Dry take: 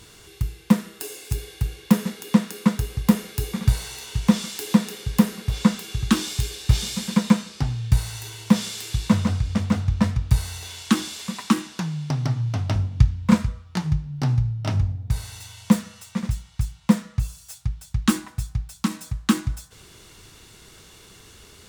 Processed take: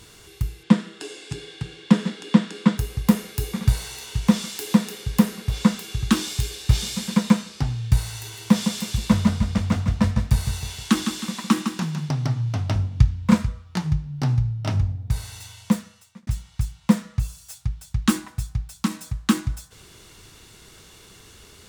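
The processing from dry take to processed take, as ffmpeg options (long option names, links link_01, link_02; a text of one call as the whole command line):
ffmpeg -i in.wav -filter_complex "[0:a]asettb=1/sr,asplit=3[link_01][link_02][link_03];[link_01]atrim=end=0.634[link_04];[link_02]atrim=start=0.63:end=2.78,asetpts=PTS-STARTPTS,afade=type=in:duration=0.004:curve=qsin,afade=type=out:start_time=2.146:duration=0.004:curve=qsin,highpass=160,equalizer=frequency=160:width_type=q:width=4:gain=7,equalizer=frequency=300:width_type=q:width=4:gain=7,equalizer=frequency=1600:width_type=q:width=4:gain=3,equalizer=frequency=3300:width_type=q:width=4:gain=5,equalizer=frequency=6200:width_type=q:width=4:gain=-5,lowpass=frequency=7700:width=0.5412,lowpass=frequency=7700:width=1.3066[link_05];[link_03]atrim=start=2.776[link_06];[link_04][link_05]acrossfade=duration=0.004:curve1=hsin:curve2=qsin[link_07];[link_07][link_06]acrossfade=duration=0.004:curve1=qsin:curve2=hsin,asettb=1/sr,asplit=3[link_08][link_09][link_10];[link_08]atrim=end=8.184[link_11];[link_09]atrim=start=8.18:end=12.09,asetpts=PTS-STARTPTS,afade=type=in:duration=0.004:curve=qsin,afade=type=out:start_time=3.906:duration=0.004:curve=qsin,aecho=1:1:157|314|471|628|785:0.422|0.181|0.078|0.0335|0.0144,atrim=end_sample=172431[link_12];[link_10]atrim=start=12.086[link_13];[link_11][link_12]acrossfade=duration=0.004:curve1=hsin:curve2=qsin[link_14];[link_14][link_13]acrossfade=duration=0.004:curve1=qsin:curve2=hsin,asplit=2[link_15][link_16];[link_15]atrim=end=16.27,asetpts=PTS-STARTPTS,afade=type=out:start_time=15.46:duration=0.81[link_17];[link_16]atrim=start=16.27,asetpts=PTS-STARTPTS,afade=type=in:duration=0.004:curve=hsin[link_18];[link_17][link_18]concat=n=2:v=0:a=1" out.wav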